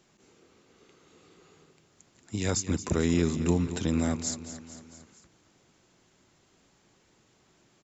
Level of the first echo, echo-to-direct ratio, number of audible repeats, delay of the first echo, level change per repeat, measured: -12.5 dB, -10.5 dB, 4, 0.225 s, -4.5 dB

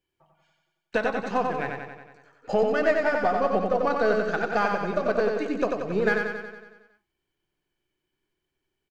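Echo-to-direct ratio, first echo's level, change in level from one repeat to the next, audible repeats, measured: -2.0 dB, -4.0 dB, -4.5 dB, 7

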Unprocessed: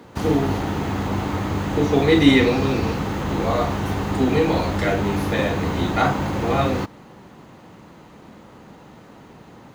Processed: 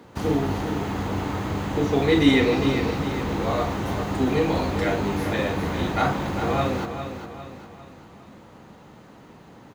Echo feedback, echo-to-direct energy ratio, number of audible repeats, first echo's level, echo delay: 45%, -8.0 dB, 4, -9.0 dB, 0.404 s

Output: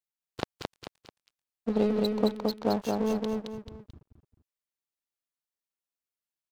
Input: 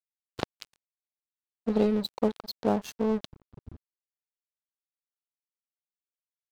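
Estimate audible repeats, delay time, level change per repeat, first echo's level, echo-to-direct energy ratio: 3, 0.219 s, -8.5 dB, -3.0 dB, -2.5 dB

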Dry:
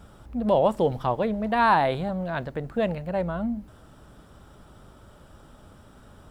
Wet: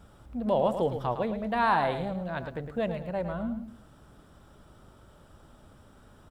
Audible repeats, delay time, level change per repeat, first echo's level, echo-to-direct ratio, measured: 2, 0.109 s, -10.0 dB, -9.0 dB, -8.5 dB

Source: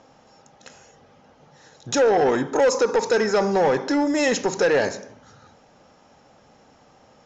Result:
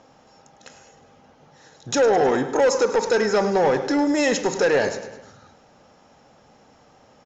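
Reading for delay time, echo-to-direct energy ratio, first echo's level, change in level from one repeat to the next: 0.104 s, -12.5 dB, -14.0 dB, -5.0 dB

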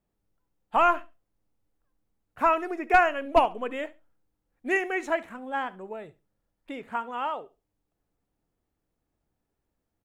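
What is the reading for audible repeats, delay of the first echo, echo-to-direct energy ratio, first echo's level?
2, 69 ms, -20.0 dB, -20.0 dB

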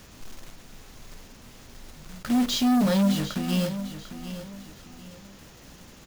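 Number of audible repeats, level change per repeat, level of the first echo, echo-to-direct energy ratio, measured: 3, -10.0 dB, -12.0 dB, -11.5 dB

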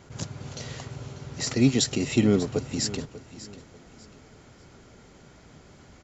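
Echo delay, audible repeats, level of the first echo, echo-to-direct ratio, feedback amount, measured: 0.592 s, 2, -16.0 dB, -15.5 dB, 30%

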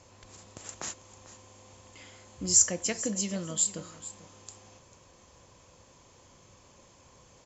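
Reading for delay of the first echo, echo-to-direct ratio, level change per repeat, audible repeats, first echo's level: 0.445 s, -16.0 dB, -14.5 dB, 2, -16.0 dB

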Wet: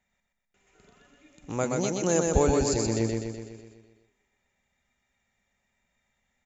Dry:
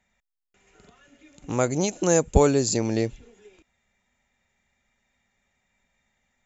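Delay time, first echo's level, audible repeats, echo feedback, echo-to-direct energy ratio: 0.125 s, -3.0 dB, 7, 57%, -1.5 dB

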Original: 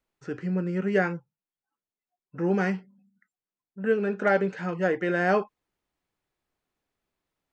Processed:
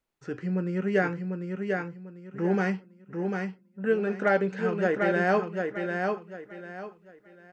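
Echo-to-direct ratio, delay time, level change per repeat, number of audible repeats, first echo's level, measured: -4.0 dB, 0.746 s, -11.0 dB, 3, -4.5 dB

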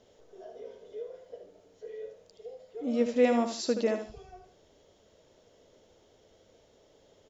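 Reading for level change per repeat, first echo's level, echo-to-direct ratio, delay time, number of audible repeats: -11.0 dB, -8.0 dB, -7.5 dB, 76 ms, 2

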